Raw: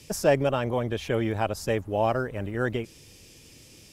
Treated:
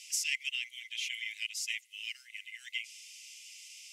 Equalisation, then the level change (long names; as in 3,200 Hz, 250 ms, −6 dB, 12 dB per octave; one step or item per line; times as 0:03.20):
Chebyshev high-pass with heavy ripple 2,000 Hz, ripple 6 dB
high-shelf EQ 9,400 Hz −12 dB
+8.0 dB